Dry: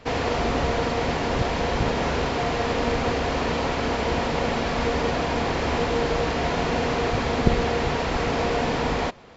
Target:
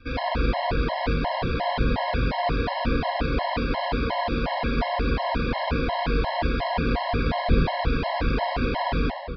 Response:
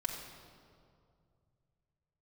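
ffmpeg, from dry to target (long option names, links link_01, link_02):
-filter_complex "[0:a]aresample=11025,aresample=44100[link_01];[1:a]atrim=start_sample=2205[link_02];[link_01][link_02]afir=irnorm=-1:irlink=0,afftfilt=real='re*gt(sin(2*PI*2.8*pts/sr)*(1-2*mod(floor(b*sr/1024/550),2)),0)':imag='im*gt(sin(2*PI*2.8*pts/sr)*(1-2*mod(floor(b*sr/1024/550),2)),0)':win_size=1024:overlap=0.75,volume=-1dB"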